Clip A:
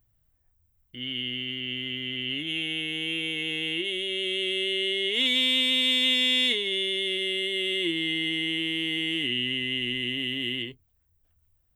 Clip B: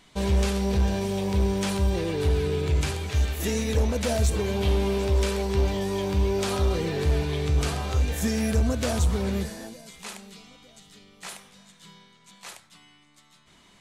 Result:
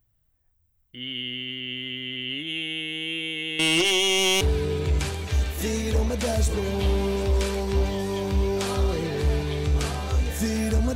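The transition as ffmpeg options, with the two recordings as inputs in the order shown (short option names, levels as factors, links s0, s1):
-filter_complex "[0:a]asettb=1/sr,asplit=3[s0][s1][s2];[s0]atrim=end=3.594[s3];[s1]atrim=start=3.59:end=4.41,asetpts=PTS-STARTPTS,afade=t=in:d=0.004:c=qsin,afade=t=out:st=0.816:d=0.004:c=qsin,aeval=exprs='0.141*sin(PI/2*2.82*val(0)/0.141)':c=same[s4];[s2]atrim=start=4.406[s5];[s3][s4]acrossfade=d=0.004:c1=hsin:c2=qsin[s6];[s6][s5]acrossfade=d=0.004:c1=qsin:c2=hsin,apad=whole_dur=10.95,atrim=end=10.95,atrim=end=4.412[s7];[1:a]atrim=start=2.228:end=8.77[s8];[s7][s8]acrossfade=d=0.004:c1=hsin:c2=hsin"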